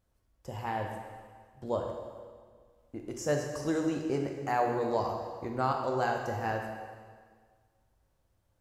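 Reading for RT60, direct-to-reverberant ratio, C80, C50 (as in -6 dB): 1.7 s, 2.0 dB, 5.0 dB, 3.5 dB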